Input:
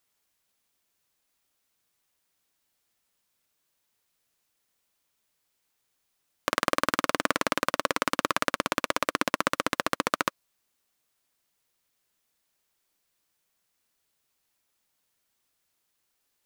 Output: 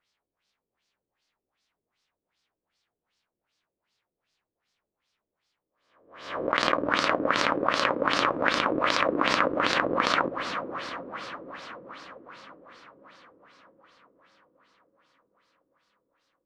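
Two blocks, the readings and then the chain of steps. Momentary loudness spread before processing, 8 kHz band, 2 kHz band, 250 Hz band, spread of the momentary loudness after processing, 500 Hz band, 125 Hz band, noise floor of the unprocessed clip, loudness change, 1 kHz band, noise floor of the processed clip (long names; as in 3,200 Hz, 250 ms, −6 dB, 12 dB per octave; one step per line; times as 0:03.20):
2 LU, −5.5 dB, +3.5 dB, +3.5 dB, 17 LU, +4.5 dB, +2.5 dB, −77 dBFS, +2.5 dB, +3.5 dB, below −85 dBFS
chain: peak hold with a rise ahead of every peak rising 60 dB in 0.77 s
feedback delay with all-pass diffusion 472 ms, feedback 63%, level −9 dB
auto-filter low-pass sine 2.6 Hz 380–5,100 Hz
level −3 dB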